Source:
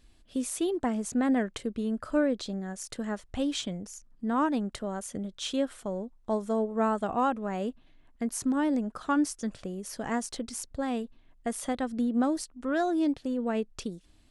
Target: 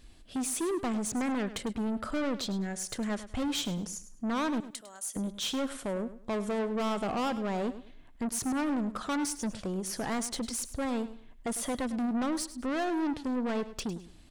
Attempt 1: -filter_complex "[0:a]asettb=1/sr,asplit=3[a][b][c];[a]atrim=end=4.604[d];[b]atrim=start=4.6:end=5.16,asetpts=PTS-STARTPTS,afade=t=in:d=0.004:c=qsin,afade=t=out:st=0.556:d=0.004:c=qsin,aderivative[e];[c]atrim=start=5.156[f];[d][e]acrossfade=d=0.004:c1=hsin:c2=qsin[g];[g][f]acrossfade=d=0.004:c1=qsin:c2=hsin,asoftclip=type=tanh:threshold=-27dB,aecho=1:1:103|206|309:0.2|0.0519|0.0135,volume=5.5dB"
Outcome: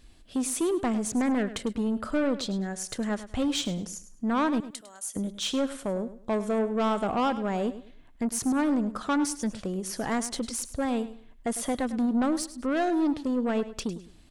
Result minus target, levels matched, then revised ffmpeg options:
soft clip: distortion -5 dB
-filter_complex "[0:a]asettb=1/sr,asplit=3[a][b][c];[a]atrim=end=4.604[d];[b]atrim=start=4.6:end=5.16,asetpts=PTS-STARTPTS,afade=t=in:d=0.004:c=qsin,afade=t=out:st=0.556:d=0.004:c=qsin,aderivative[e];[c]atrim=start=5.156[f];[d][e]acrossfade=d=0.004:c1=hsin:c2=qsin[g];[g][f]acrossfade=d=0.004:c1=qsin:c2=hsin,asoftclip=type=tanh:threshold=-34dB,aecho=1:1:103|206|309:0.2|0.0519|0.0135,volume=5.5dB"

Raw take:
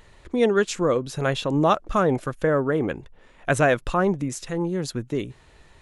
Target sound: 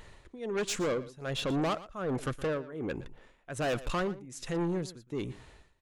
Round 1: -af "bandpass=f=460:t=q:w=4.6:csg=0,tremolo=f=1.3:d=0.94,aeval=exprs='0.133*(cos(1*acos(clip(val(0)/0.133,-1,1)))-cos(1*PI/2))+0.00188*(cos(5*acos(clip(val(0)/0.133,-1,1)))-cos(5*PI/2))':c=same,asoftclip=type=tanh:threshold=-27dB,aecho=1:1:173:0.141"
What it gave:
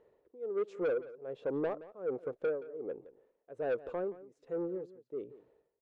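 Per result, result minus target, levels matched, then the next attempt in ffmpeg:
echo 56 ms late; 500 Hz band +3.0 dB
-af "bandpass=f=460:t=q:w=4.6:csg=0,tremolo=f=1.3:d=0.94,aeval=exprs='0.133*(cos(1*acos(clip(val(0)/0.133,-1,1)))-cos(1*PI/2))+0.00188*(cos(5*acos(clip(val(0)/0.133,-1,1)))-cos(5*PI/2))':c=same,asoftclip=type=tanh:threshold=-27dB,aecho=1:1:117:0.141"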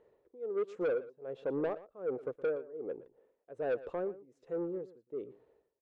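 500 Hz band +3.0 dB
-af "tremolo=f=1.3:d=0.94,aeval=exprs='0.133*(cos(1*acos(clip(val(0)/0.133,-1,1)))-cos(1*PI/2))+0.00188*(cos(5*acos(clip(val(0)/0.133,-1,1)))-cos(5*PI/2))':c=same,asoftclip=type=tanh:threshold=-27dB,aecho=1:1:117:0.141"

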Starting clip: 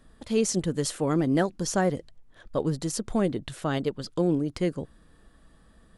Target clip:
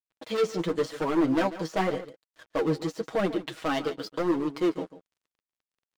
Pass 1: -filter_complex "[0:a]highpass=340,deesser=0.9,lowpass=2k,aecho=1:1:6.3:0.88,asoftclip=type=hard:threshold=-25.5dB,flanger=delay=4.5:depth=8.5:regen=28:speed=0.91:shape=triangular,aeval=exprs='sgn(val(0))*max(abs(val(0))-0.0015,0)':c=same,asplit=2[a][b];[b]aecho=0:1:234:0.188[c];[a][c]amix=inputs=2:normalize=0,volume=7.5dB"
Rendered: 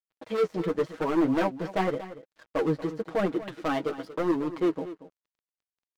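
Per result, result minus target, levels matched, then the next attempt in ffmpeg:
echo 90 ms late; 4000 Hz band -5.0 dB
-filter_complex "[0:a]highpass=340,deesser=0.9,lowpass=2k,aecho=1:1:6.3:0.88,asoftclip=type=hard:threshold=-25.5dB,flanger=delay=4.5:depth=8.5:regen=28:speed=0.91:shape=triangular,aeval=exprs='sgn(val(0))*max(abs(val(0))-0.0015,0)':c=same,asplit=2[a][b];[b]aecho=0:1:144:0.188[c];[a][c]amix=inputs=2:normalize=0,volume=7.5dB"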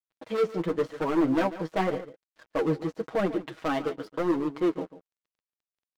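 4000 Hz band -5.0 dB
-filter_complex "[0:a]highpass=340,deesser=0.9,lowpass=4.7k,aecho=1:1:6.3:0.88,asoftclip=type=hard:threshold=-25.5dB,flanger=delay=4.5:depth=8.5:regen=28:speed=0.91:shape=triangular,aeval=exprs='sgn(val(0))*max(abs(val(0))-0.0015,0)':c=same,asplit=2[a][b];[b]aecho=0:1:144:0.188[c];[a][c]amix=inputs=2:normalize=0,volume=7.5dB"

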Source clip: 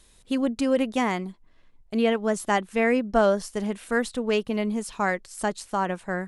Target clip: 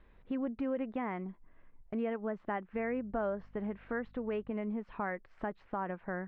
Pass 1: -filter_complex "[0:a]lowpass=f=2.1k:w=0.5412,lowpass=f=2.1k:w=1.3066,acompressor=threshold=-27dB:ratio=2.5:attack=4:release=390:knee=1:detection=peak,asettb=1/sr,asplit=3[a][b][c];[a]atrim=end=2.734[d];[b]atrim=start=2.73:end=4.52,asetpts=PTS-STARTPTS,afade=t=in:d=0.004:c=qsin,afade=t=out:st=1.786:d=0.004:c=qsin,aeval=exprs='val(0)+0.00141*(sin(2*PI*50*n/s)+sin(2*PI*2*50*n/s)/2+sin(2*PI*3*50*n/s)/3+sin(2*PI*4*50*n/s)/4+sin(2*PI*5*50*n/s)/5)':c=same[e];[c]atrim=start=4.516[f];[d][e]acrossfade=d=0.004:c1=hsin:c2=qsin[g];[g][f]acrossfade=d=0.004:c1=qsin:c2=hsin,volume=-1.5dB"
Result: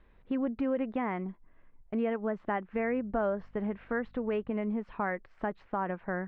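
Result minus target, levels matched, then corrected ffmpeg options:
compressor: peak gain reduction -4 dB
-filter_complex "[0:a]lowpass=f=2.1k:w=0.5412,lowpass=f=2.1k:w=1.3066,acompressor=threshold=-34dB:ratio=2.5:attack=4:release=390:knee=1:detection=peak,asettb=1/sr,asplit=3[a][b][c];[a]atrim=end=2.734[d];[b]atrim=start=2.73:end=4.52,asetpts=PTS-STARTPTS,afade=t=in:d=0.004:c=qsin,afade=t=out:st=1.786:d=0.004:c=qsin,aeval=exprs='val(0)+0.00141*(sin(2*PI*50*n/s)+sin(2*PI*2*50*n/s)/2+sin(2*PI*3*50*n/s)/3+sin(2*PI*4*50*n/s)/4+sin(2*PI*5*50*n/s)/5)':c=same[e];[c]atrim=start=4.516[f];[d][e]acrossfade=d=0.004:c1=hsin:c2=qsin[g];[g][f]acrossfade=d=0.004:c1=qsin:c2=hsin,volume=-1.5dB"

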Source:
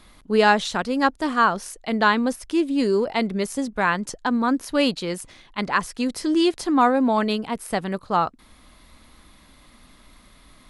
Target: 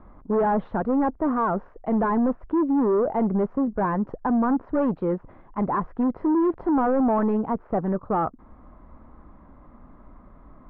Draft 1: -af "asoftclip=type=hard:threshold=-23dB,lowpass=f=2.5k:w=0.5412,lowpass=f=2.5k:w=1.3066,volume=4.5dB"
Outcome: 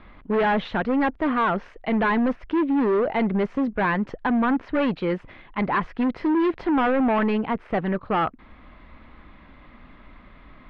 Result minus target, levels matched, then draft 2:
2000 Hz band +10.5 dB
-af "asoftclip=type=hard:threshold=-23dB,lowpass=f=1.2k:w=0.5412,lowpass=f=1.2k:w=1.3066,volume=4.5dB"

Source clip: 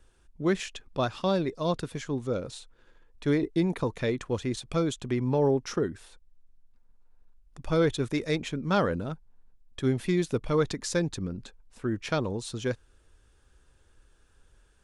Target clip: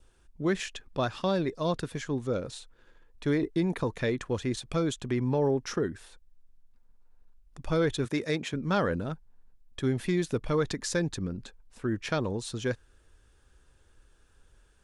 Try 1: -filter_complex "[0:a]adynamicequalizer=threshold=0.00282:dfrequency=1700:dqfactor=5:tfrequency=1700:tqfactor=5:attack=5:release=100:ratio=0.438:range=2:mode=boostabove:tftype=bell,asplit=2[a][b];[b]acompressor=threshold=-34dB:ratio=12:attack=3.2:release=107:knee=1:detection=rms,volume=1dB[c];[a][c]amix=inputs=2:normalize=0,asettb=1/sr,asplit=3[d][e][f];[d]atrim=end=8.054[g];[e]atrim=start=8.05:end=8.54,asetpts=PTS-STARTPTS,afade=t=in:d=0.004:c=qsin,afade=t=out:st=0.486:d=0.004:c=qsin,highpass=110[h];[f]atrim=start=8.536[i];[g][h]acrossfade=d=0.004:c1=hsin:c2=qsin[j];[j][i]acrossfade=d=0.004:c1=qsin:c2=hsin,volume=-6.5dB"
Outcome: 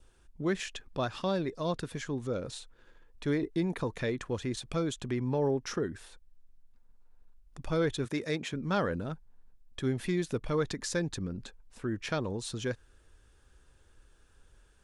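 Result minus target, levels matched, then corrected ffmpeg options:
compressor: peak gain reduction +10 dB
-filter_complex "[0:a]adynamicequalizer=threshold=0.00282:dfrequency=1700:dqfactor=5:tfrequency=1700:tqfactor=5:attack=5:release=100:ratio=0.438:range=2:mode=boostabove:tftype=bell,asplit=2[a][b];[b]acompressor=threshold=-23dB:ratio=12:attack=3.2:release=107:knee=1:detection=rms,volume=1dB[c];[a][c]amix=inputs=2:normalize=0,asettb=1/sr,asplit=3[d][e][f];[d]atrim=end=8.054[g];[e]atrim=start=8.05:end=8.54,asetpts=PTS-STARTPTS,afade=t=in:d=0.004:c=qsin,afade=t=out:st=0.486:d=0.004:c=qsin,highpass=110[h];[f]atrim=start=8.536[i];[g][h]acrossfade=d=0.004:c1=hsin:c2=qsin[j];[j][i]acrossfade=d=0.004:c1=qsin:c2=hsin,volume=-6.5dB"

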